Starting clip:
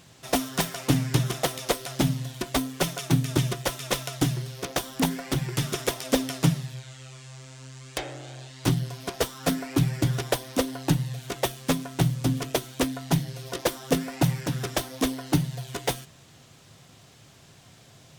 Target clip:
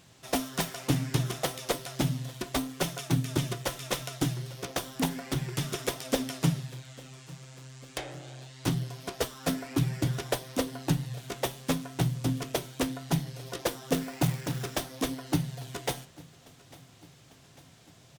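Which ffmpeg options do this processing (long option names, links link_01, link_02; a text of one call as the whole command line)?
ffmpeg -i in.wav -filter_complex "[0:a]flanger=delay=8.8:depth=6.2:regen=-77:speed=0.66:shape=triangular,asettb=1/sr,asplit=3[link_01][link_02][link_03];[link_01]atrim=end=13.934[link_04];[link_02]atrim=start=13.93:end=14.84,asetpts=PTS-STARTPTS,afade=type=in:duration=0.004:curve=qsin,afade=type=out:start_time=0.906:duration=0.004:curve=qsin,acrusher=bits=3:mode=log:mix=0:aa=0.000001[link_05];[link_03]atrim=start=14.836[link_06];[link_04][link_05]acrossfade=duration=0.004:curve1=hsin:curve2=qsin[link_07];[link_07][link_06]acrossfade=duration=0.004:curve1=qsin:curve2=hsin,aecho=1:1:848|1696|2544|3392:0.075|0.0435|0.0252|0.0146" out.wav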